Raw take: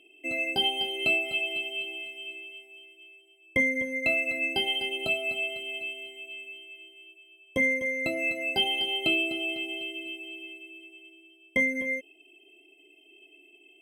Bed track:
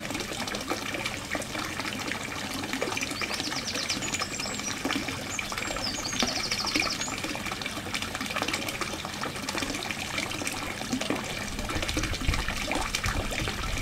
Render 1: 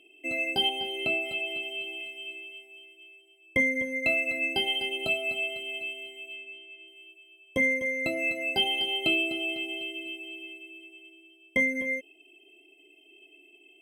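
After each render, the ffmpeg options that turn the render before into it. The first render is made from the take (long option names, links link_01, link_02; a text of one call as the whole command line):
ffmpeg -i in.wav -filter_complex "[0:a]asettb=1/sr,asplit=3[link_01][link_02][link_03];[link_01]atrim=end=0.694[link_04];[link_02]atrim=start=0.69:end=2.01,asetpts=PTS-STARTPTS,afade=type=in:duration=0.004:curve=qsin,afade=type=out:start_time=1.316:duration=0.004:curve=qsin,acrossover=split=2500[link_05][link_06];[link_06]acompressor=threshold=-37dB:ratio=4:attack=1:release=60[link_07];[link_05][link_07]amix=inputs=2:normalize=0[link_08];[link_03]atrim=start=2.006[link_09];[link_04][link_08]acrossfade=duration=0.004:curve1=hsin:curve2=qsin[link_10];[link_10][link_09]acrossfade=duration=0.004:curve1=qsin:curve2=hsin,asettb=1/sr,asplit=3[link_11][link_12][link_13];[link_11]atrim=end=6.364[link_14];[link_12]atrim=start=6.36:end=6.88,asetpts=PTS-STARTPTS,afade=type=in:duration=0.004:curve=qsin,afade=type=out:start_time=0.516:duration=0.004:curve=qsin,adynamicsmooth=sensitivity=5:basefreq=5800[link_15];[link_13]atrim=start=6.876[link_16];[link_14][link_15]acrossfade=duration=0.004:curve1=hsin:curve2=qsin[link_17];[link_17][link_16]acrossfade=duration=0.004:curve1=qsin:curve2=hsin" out.wav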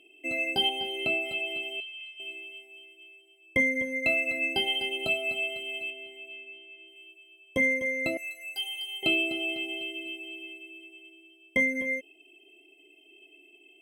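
ffmpeg -i in.wav -filter_complex "[0:a]asettb=1/sr,asplit=3[link_01][link_02][link_03];[link_01]atrim=end=1.804[link_04];[link_02]atrim=start=1.8:end=2.2,asetpts=PTS-STARTPTS,afade=type=in:duration=0.004:curve=qsin,afade=type=out:start_time=0.396:duration=0.004:curve=qsin,bandpass=frequency=3700:width_type=q:width=1.9[link_05];[link_03]atrim=start=2.196[link_06];[link_04][link_05]acrossfade=duration=0.004:curve1=hsin:curve2=qsin[link_07];[link_07][link_06]acrossfade=duration=0.004:curve1=qsin:curve2=hsin,asettb=1/sr,asplit=3[link_08][link_09][link_10];[link_08]atrim=end=5.904[link_11];[link_09]atrim=start=5.9:end=6.96,asetpts=PTS-STARTPTS,afade=type=in:duration=0.004:curve=qsin,afade=type=out:start_time=1.056:duration=0.004:curve=qsin,acrossover=split=3200[link_12][link_13];[link_13]acompressor=threshold=-59dB:ratio=4:attack=1:release=60[link_14];[link_12][link_14]amix=inputs=2:normalize=0[link_15];[link_10]atrim=start=6.956[link_16];[link_11][link_15]acrossfade=duration=0.004:curve1=hsin:curve2=qsin[link_17];[link_17][link_16]acrossfade=duration=0.004:curve1=qsin:curve2=hsin,asettb=1/sr,asplit=3[link_18][link_19][link_20];[link_18]atrim=end=8.174[link_21];[link_19]atrim=start=8.17:end=9.03,asetpts=PTS-STARTPTS,afade=type=in:duration=0.004:curve=qsin,afade=type=out:start_time=0.856:duration=0.004:curve=qsin,aderivative[link_22];[link_20]atrim=start=9.026[link_23];[link_21][link_22]acrossfade=duration=0.004:curve1=hsin:curve2=qsin[link_24];[link_24][link_23]acrossfade=duration=0.004:curve1=qsin:curve2=hsin" out.wav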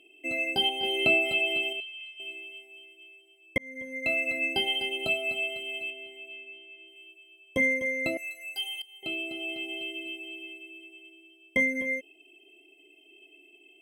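ffmpeg -i in.wav -filter_complex "[0:a]asettb=1/sr,asplit=3[link_01][link_02][link_03];[link_01]atrim=end=0.834[link_04];[link_02]atrim=start=0.83:end=1.73,asetpts=PTS-STARTPTS,afade=type=in:duration=0.004:curve=qsin,afade=type=out:start_time=0.896:duration=0.004:curve=qsin,acontrast=39[link_05];[link_03]atrim=start=1.726[link_06];[link_04][link_05]acrossfade=duration=0.004:curve1=hsin:curve2=qsin[link_07];[link_07][link_06]acrossfade=duration=0.004:curve1=qsin:curve2=hsin,asplit=3[link_08][link_09][link_10];[link_08]atrim=end=3.58,asetpts=PTS-STARTPTS,afade=type=out:start_time=3.576:duration=0.004:curve=hsin[link_11];[link_09]atrim=start=3.58:end=8.82,asetpts=PTS-STARTPTS,afade=type=in:duration=0.67,afade=type=out:start_time=5.236:duration=0.004:curve=hsin:silence=0.133352[link_12];[link_10]atrim=start=8.82,asetpts=PTS-STARTPTS,afade=type=in:duration=1.07:silence=0.133352[link_13];[link_11][link_12][link_13]concat=n=3:v=0:a=1" out.wav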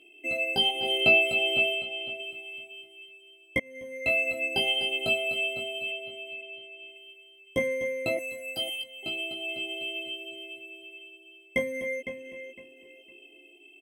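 ffmpeg -i in.wav -filter_complex "[0:a]asplit=2[link_01][link_02];[link_02]adelay=17,volume=-2.5dB[link_03];[link_01][link_03]amix=inputs=2:normalize=0,asplit=2[link_04][link_05];[link_05]adelay=508,lowpass=frequency=4100:poles=1,volume=-9.5dB,asplit=2[link_06][link_07];[link_07]adelay=508,lowpass=frequency=4100:poles=1,volume=0.25,asplit=2[link_08][link_09];[link_09]adelay=508,lowpass=frequency=4100:poles=1,volume=0.25[link_10];[link_06][link_08][link_10]amix=inputs=3:normalize=0[link_11];[link_04][link_11]amix=inputs=2:normalize=0" out.wav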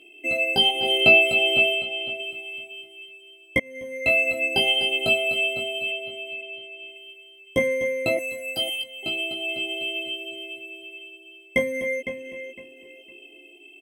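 ffmpeg -i in.wav -af "volume=5.5dB" out.wav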